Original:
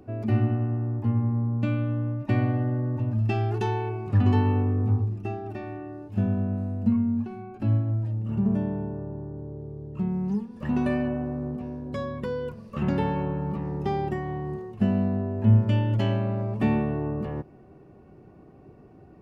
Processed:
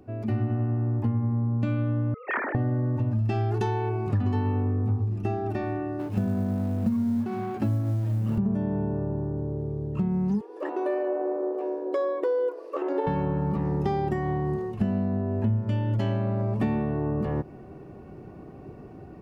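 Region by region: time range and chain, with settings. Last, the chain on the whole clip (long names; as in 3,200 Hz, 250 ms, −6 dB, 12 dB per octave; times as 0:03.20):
0:02.14–0:02.55: three sine waves on the formant tracks + resonant band-pass 1,600 Hz, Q 2.2 + double-tracking delay 25 ms −13.5 dB
0:05.99–0:08.38: mu-law and A-law mismatch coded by mu + high-pass filter 99 Hz
0:10.41–0:13.07: tilt shelving filter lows +8.5 dB, about 1,100 Hz + downward compressor 5 to 1, threshold −20 dBFS + linear-phase brick-wall high-pass 290 Hz
whole clip: automatic gain control gain up to 9 dB; dynamic equaliser 2,700 Hz, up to −5 dB, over −48 dBFS, Q 2.5; downward compressor 5 to 1, threshold −21 dBFS; level −2 dB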